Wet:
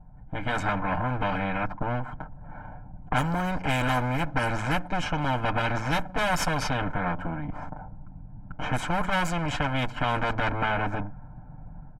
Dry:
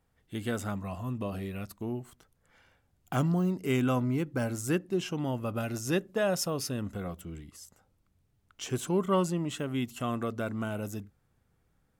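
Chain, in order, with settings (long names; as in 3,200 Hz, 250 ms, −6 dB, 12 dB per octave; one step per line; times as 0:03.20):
lower of the sound and its delayed copy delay 6.7 ms
low-pass that shuts in the quiet parts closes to 670 Hz, open at −26 dBFS
spectral tilt −3 dB per octave
comb filter 1.3 ms, depth 99%
downward compressor 2 to 1, threshold −35 dBFS, peak gain reduction 12.5 dB
graphic EQ with 10 bands 125 Hz −3 dB, 500 Hz −7 dB, 1,000 Hz +10 dB, 2,000 Hz +4 dB, 4,000 Hz −5 dB
automatic gain control gain up to 8.5 dB
every bin compressed towards the loudest bin 2 to 1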